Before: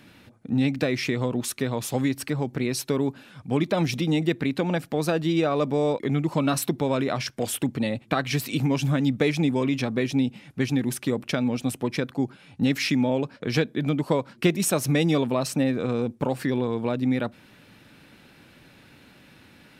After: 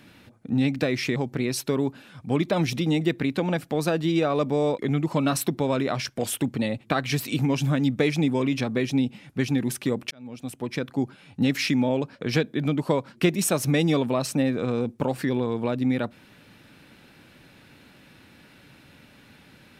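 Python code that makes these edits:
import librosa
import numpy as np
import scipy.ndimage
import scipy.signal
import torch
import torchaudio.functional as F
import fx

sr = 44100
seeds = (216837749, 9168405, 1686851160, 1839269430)

y = fx.edit(x, sr, fx.cut(start_s=1.16, length_s=1.21),
    fx.fade_in_span(start_s=11.32, length_s=0.86), tone=tone)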